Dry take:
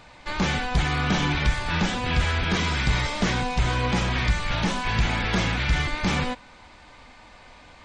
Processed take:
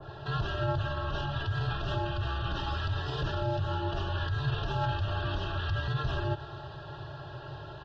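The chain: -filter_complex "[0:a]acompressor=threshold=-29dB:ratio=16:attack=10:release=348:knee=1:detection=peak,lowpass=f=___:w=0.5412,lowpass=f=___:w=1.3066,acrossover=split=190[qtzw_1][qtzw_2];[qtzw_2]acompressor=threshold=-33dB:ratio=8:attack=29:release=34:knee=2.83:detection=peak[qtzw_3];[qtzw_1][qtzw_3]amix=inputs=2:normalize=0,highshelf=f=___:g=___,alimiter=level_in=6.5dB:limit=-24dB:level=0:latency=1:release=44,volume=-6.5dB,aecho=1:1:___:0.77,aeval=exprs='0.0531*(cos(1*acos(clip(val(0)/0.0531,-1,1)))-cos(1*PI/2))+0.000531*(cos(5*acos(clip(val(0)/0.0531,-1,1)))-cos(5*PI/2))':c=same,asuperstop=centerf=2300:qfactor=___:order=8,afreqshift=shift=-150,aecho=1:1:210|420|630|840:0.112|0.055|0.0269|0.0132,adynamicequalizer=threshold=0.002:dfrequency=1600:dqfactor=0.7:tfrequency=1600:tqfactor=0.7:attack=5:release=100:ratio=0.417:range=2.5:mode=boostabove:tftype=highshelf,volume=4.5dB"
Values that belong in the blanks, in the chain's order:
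4600, 4600, 2200, -11, 3.9, 2.8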